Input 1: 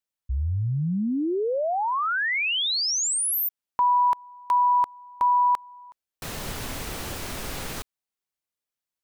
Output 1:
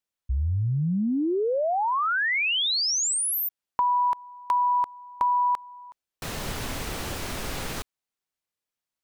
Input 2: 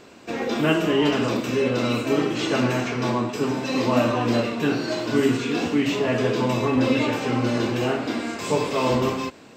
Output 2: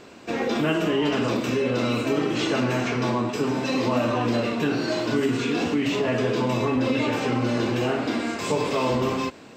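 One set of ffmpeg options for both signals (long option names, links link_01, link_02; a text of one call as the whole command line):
ffmpeg -i in.wav -af "highshelf=frequency=8900:gain=-4.5,acompressor=threshold=-27dB:ratio=2.5:attack=59:release=45:knee=1:detection=rms,volume=1.5dB" out.wav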